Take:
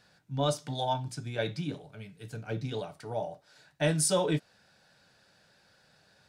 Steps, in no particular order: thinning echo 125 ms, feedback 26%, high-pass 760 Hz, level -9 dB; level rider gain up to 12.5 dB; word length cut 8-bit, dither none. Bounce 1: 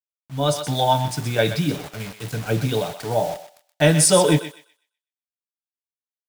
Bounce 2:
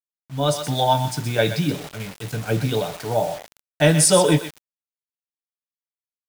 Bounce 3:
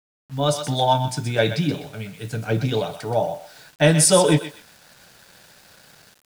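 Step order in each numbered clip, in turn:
word length cut > thinning echo > level rider; thinning echo > word length cut > level rider; thinning echo > level rider > word length cut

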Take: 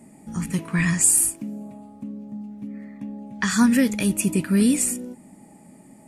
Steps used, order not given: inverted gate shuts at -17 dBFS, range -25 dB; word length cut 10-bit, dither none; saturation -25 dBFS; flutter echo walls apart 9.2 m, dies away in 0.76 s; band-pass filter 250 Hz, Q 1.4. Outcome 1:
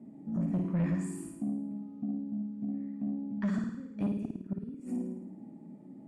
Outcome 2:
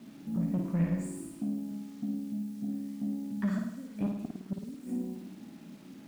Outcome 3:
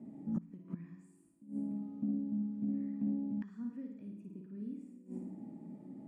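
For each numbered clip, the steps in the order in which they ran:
word length cut > band-pass filter > inverted gate > flutter echo > saturation; band-pass filter > inverted gate > word length cut > saturation > flutter echo; word length cut > flutter echo > inverted gate > saturation > band-pass filter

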